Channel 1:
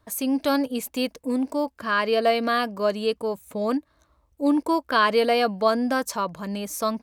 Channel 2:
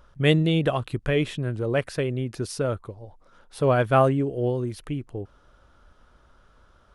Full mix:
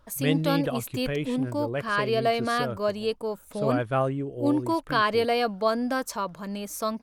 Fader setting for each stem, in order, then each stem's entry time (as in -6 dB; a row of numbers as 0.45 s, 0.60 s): -3.5 dB, -6.5 dB; 0.00 s, 0.00 s